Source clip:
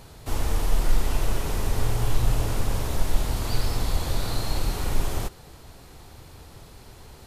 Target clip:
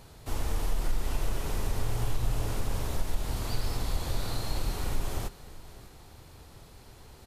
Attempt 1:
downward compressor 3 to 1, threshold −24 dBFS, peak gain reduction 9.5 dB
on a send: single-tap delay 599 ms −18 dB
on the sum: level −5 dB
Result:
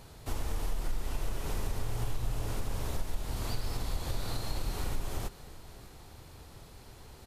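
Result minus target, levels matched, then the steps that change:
downward compressor: peak gain reduction +4.5 dB
change: downward compressor 3 to 1, threshold −17 dBFS, peak gain reduction 5 dB

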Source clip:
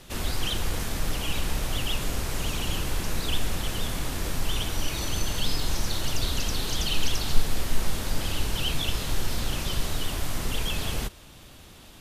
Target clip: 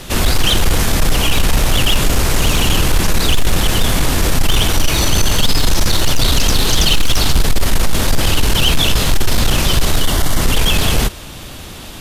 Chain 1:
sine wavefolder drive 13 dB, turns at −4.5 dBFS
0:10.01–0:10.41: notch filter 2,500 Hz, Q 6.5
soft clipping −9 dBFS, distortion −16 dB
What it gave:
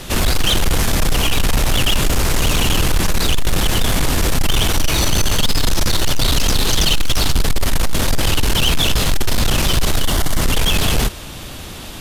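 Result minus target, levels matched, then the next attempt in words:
soft clipping: distortion +13 dB
sine wavefolder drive 13 dB, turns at −4.5 dBFS
0:10.01–0:10.41: notch filter 2,500 Hz, Q 6.5
soft clipping −0.5 dBFS, distortion −29 dB

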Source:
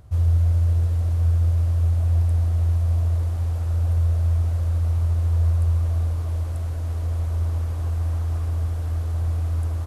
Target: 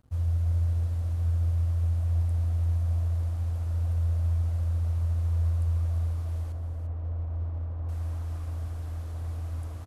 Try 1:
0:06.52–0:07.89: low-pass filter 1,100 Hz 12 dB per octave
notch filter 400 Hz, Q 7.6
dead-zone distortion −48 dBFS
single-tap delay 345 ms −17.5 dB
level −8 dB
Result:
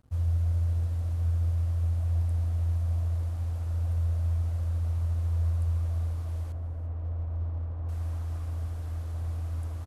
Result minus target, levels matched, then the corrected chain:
echo-to-direct −8.5 dB
0:06.52–0:07.89: low-pass filter 1,100 Hz 12 dB per octave
notch filter 400 Hz, Q 7.6
dead-zone distortion −48 dBFS
single-tap delay 345 ms −9 dB
level −8 dB

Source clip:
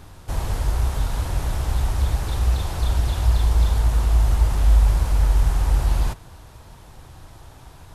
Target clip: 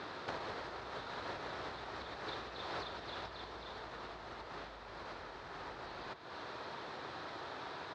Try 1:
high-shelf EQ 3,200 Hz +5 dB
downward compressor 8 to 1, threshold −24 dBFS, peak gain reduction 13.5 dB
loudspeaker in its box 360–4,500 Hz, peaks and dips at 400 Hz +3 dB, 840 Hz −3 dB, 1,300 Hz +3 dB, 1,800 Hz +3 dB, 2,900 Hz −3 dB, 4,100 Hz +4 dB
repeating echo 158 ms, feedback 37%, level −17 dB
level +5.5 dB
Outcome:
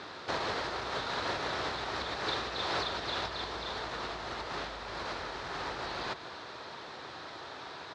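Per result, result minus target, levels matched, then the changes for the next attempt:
downward compressor: peak gain reduction −8.5 dB; 8,000 Hz band +4.0 dB
change: downward compressor 8 to 1, threshold −33.5 dBFS, peak gain reduction 22 dB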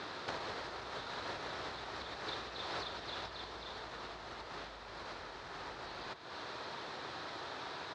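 8,000 Hz band +4.5 dB
change: high-shelf EQ 3,200 Hz −2.5 dB

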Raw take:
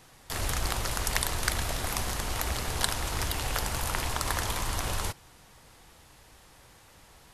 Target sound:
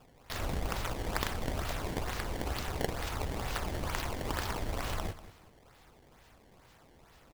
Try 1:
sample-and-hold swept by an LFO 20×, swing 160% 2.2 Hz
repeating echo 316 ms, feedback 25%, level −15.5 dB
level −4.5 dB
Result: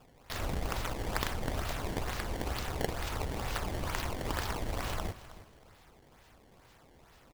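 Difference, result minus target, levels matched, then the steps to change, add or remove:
echo 125 ms late
change: repeating echo 191 ms, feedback 25%, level −15.5 dB

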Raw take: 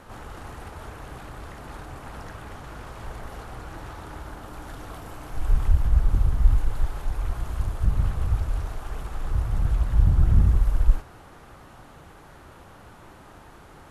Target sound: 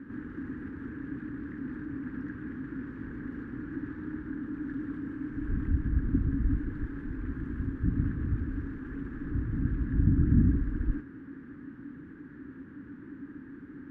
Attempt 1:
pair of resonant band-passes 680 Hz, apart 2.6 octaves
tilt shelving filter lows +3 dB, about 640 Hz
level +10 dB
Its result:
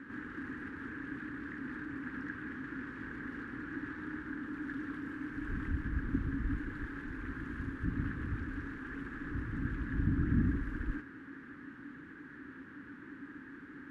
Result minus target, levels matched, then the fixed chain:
500 Hz band +3.0 dB
pair of resonant band-passes 680 Hz, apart 2.6 octaves
tilt shelving filter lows +11.5 dB, about 640 Hz
level +10 dB

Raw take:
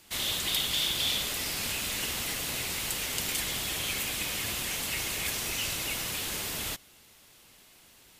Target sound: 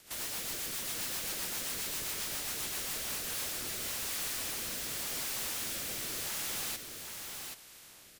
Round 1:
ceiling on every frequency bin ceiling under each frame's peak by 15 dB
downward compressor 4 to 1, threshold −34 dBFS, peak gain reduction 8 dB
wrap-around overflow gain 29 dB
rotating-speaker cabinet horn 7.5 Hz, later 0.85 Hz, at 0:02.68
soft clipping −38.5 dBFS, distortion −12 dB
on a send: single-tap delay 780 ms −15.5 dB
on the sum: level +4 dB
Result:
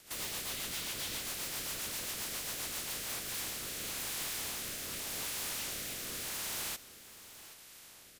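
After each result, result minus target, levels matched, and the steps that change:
downward compressor: peak gain reduction +8 dB; echo-to-direct −10 dB
remove: downward compressor 4 to 1, threshold −34 dBFS, peak gain reduction 8 dB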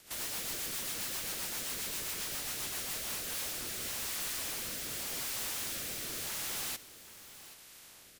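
echo-to-direct −10 dB
change: single-tap delay 780 ms −5.5 dB

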